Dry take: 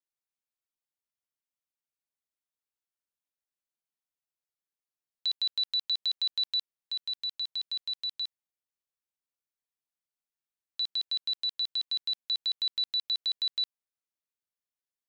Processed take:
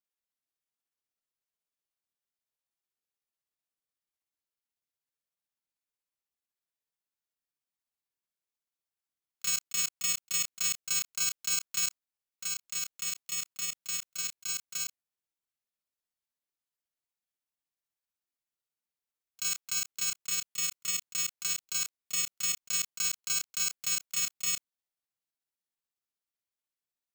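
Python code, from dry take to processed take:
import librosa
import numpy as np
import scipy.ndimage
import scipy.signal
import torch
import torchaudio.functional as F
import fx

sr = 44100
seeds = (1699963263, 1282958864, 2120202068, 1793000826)

y = fx.bit_reversed(x, sr, seeds[0], block=128)
y = fx.stretch_grains(y, sr, factor=1.8, grain_ms=124.0)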